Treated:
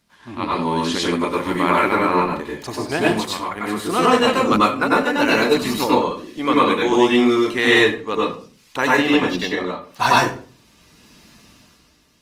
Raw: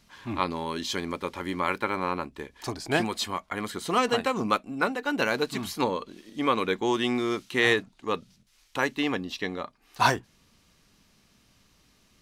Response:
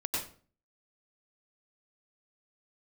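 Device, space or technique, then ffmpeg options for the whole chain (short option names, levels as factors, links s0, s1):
far-field microphone of a smart speaker: -filter_complex "[1:a]atrim=start_sample=2205[s0];[0:a][s0]afir=irnorm=-1:irlink=0,highpass=f=100:p=1,dynaudnorm=f=120:g=11:m=3.76,volume=0.891" -ar 48000 -c:a libopus -b:a 24k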